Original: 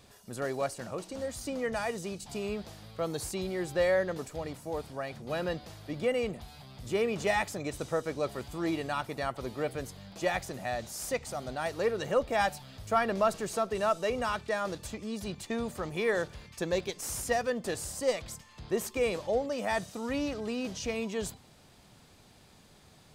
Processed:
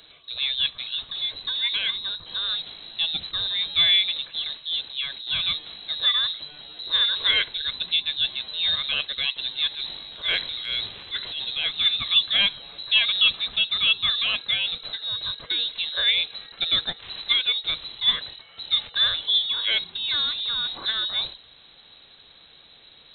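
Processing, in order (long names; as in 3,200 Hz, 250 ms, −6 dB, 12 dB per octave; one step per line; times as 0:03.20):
voice inversion scrambler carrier 4,000 Hz
0:09.68–0:11.45: transient designer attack −9 dB, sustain +6 dB
level +7 dB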